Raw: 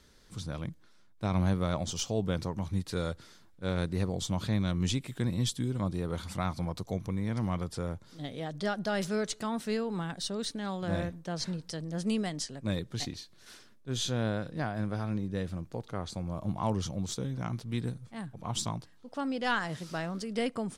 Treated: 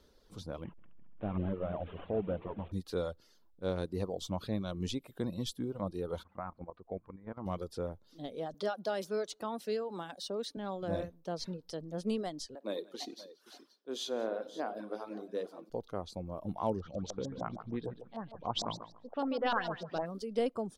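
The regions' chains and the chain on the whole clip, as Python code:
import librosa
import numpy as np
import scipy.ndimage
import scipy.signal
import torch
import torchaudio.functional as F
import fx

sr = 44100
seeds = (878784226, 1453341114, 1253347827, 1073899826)

y = fx.chain(x, sr, fx.delta_mod(bps=16000, step_db=-42.0),
    fx.echo_heads(ms=68, heads='second and third', feedback_pct=65, wet_db=-15.5), at=(0.64, 2.72))
y = fx.chain(y, sr, fx.lowpass(hz=1800.0, slope=24),
    fx.tilt_shelf(db=-5.0, hz=920.0),
    fx.level_steps(step_db=9), at=(6.23, 7.46))
y = fx.chain(y, sr, fx.highpass(hz=330.0, slope=6),
    fx.band_squash(depth_pct=40), at=(8.54, 10.57))
y = fx.chain(y, sr, fx.highpass(hz=270.0, slope=24),
    fx.echo_multitap(ms=(53, 98, 179, 525), db=(-12.0, -15.0, -12.0, -14.0)), at=(12.55, 15.7))
y = fx.chain(y, sr, fx.echo_feedback(ms=140, feedback_pct=31, wet_db=-7.0),
    fx.filter_lfo_lowpass(shape='saw_up', hz=6.6, low_hz=670.0, high_hz=6600.0, q=2.5), at=(16.8, 20.06))
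y = fx.dereverb_blind(y, sr, rt60_s=0.87)
y = fx.graphic_eq(y, sr, hz=(125, 500, 2000, 8000), db=(-9, 5, -9, -10))
y = y * librosa.db_to_amplitude(-1.5)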